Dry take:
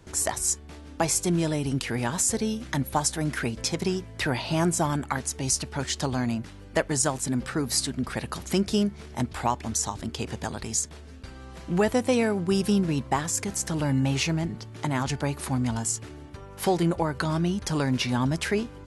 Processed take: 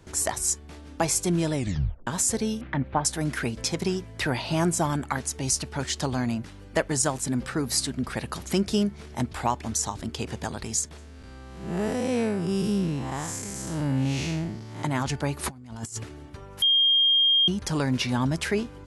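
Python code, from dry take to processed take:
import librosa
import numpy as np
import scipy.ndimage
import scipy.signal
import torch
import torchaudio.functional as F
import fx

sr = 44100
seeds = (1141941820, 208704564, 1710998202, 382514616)

y = fx.lowpass(x, sr, hz=2700.0, slope=24, at=(2.61, 3.05))
y = fx.spec_blur(y, sr, span_ms=194.0, at=(10.97, 14.82), fade=0.02)
y = fx.over_compress(y, sr, threshold_db=-34.0, ratio=-0.5, at=(15.43, 16.02), fade=0.02)
y = fx.edit(y, sr, fx.tape_stop(start_s=1.55, length_s=0.52),
    fx.bleep(start_s=16.62, length_s=0.86, hz=3220.0, db=-17.0), tone=tone)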